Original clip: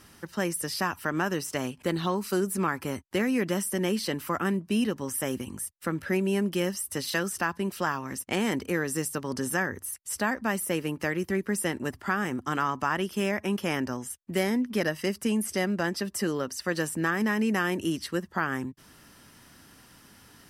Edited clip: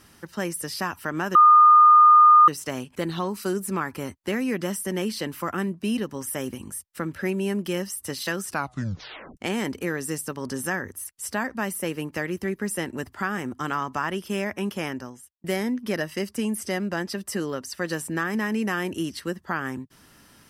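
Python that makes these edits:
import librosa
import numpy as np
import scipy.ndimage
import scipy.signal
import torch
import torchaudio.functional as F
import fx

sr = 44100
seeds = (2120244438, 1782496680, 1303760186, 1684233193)

y = fx.edit(x, sr, fx.insert_tone(at_s=1.35, length_s=1.13, hz=1220.0, db=-9.5),
    fx.tape_stop(start_s=7.35, length_s=0.89),
    fx.fade_out_span(start_s=13.62, length_s=0.69), tone=tone)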